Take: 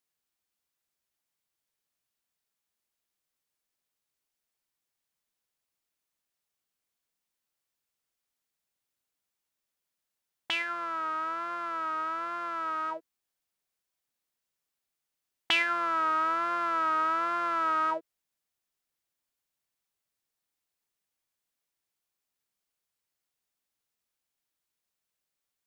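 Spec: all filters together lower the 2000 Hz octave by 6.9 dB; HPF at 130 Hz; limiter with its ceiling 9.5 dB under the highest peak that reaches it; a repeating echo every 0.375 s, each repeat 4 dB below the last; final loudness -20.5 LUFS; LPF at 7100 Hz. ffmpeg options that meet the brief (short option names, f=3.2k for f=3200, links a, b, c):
-af "highpass=130,lowpass=7.1k,equalizer=f=2k:t=o:g=-9,alimiter=level_in=1.5dB:limit=-24dB:level=0:latency=1,volume=-1.5dB,aecho=1:1:375|750|1125|1500|1875|2250|2625|3000|3375:0.631|0.398|0.25|0.158|0.0994|0.0626|0.0394|0.0249|0.0157,volume=13dB"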